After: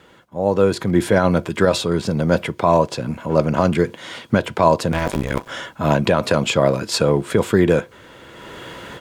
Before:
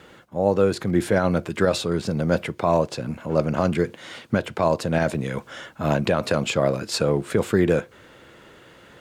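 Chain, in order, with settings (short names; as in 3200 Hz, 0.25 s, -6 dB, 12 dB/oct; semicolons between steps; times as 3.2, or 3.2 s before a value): 4.92–5.49 cycle switcher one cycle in 2, muted; AGC gain up to 16 dB; small resonant body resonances 980/3300 Hz, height 11 dB, ringing for 0.1 s; gain -2 dB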